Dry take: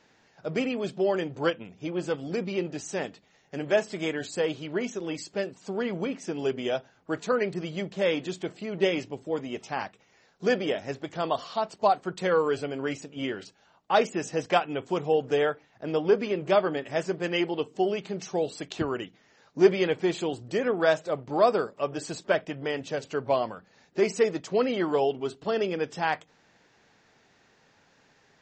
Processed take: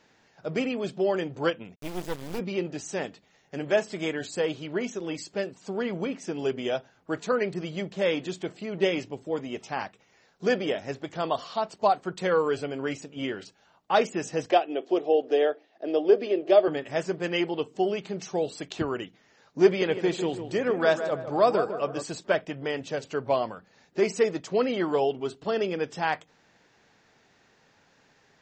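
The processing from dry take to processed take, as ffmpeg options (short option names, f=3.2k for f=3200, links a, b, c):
-filter_complex "[0:a]asplit=3[a][b][c];[a]afade=t=out:st=1.74:d=0.02[d];[b]acrusher=bits=4:dc=4:mix=0:aa=0.000001,afade=t=in:st=1.74:d=0.02,afade=t=out:st=2.38:d=0.02[e];[c]afade=t=in:st=2.38:d=0.02[f];[d][e][f]amix=inputs=3:normalize=0,asettb=1/sr,asplit=3[g][h][i];[g]atrim=end=14.514[j];[h]atrim=start=14.51:end=16.68,asetpts=PTS-STARTPTS,afade=t=in:d=0.004:c=qsin,afade=t=out:st=2.166:d=0.004:c=qsin,highpass=f=270:w=0.5412,highpass=f=270:w=1.3066,equalizer=f=350:t=q:w=4:g=6,equalizer=f=660:t=q:w=4:g=7,equalizer=f=970:t=q:w=4:g=-9,equalizer=f=1.4k:t=q:w=4:g=-8,equalizer=f=2.2k:t=q:w=4:g=-5,lowpass=f=5.2k:w=0.5412,lowpass=f=5.2k:w=1.3066[k];[i]atrim=start=16.676[l];[j][k]acrossfade=d=0.004:c1=hsin:c2=qsin[m];[m][l]acrossfade=d=0.004:c1=qsin:c2=hsin,asettb=1/sr,asplit=3[n][o][p];[n]atrim=end=19.664[q];[o]atrim=start=19.66:end=22.03,asetpts=PTS-STARTPTS,afade=t=in:d=0.004:c=qsin,afade=t=out:st=2.366:d=0.004:c=qsin,asplit=2[r][s];[s]adelay=153,lowpass=f=1.8k:p=1,volume=-9dB,asplit=2[t][u];[u]adelay=153,lowpass=f=1.8k:p=1,volume=0.46,asplit=2[v][w];[w]adelay=153,lowpass=f=1.8k:p=1,volume=0.46,asplit=2[x][y];[y]adelay=153,lowpass=f=1.8k:p=1,volume=0.46,asplit=2[z][aa];[aa]adelay=153,lowpass=f=1.8k:p=1,volume=0.46[ab];[r][t][v][x][z][ab]amix=inputs=6:normalize=0,atrim=end_sample=104517[ac];[p]atrim=start=22.026[ad];[q][ac]acrossfade=d=0.004:c1=hsin:c2=qsin[ae];[ae][ad]acrossfade=d=0.004:c1=qsin:c2=hsin"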